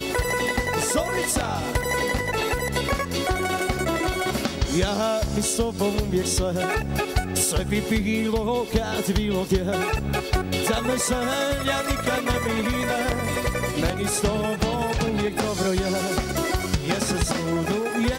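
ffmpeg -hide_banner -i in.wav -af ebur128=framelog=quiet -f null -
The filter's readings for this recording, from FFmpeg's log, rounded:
Integrated loudness:
  I:         -24.0 LUFS
  Threshold: -34.0 LUFS
Loudness range:
  LRA:         0.7 LU
  Threshold: -44.0 LUFS
  LRA low:   -24.3 LUFS
  LRA high:  -23.7 LUFS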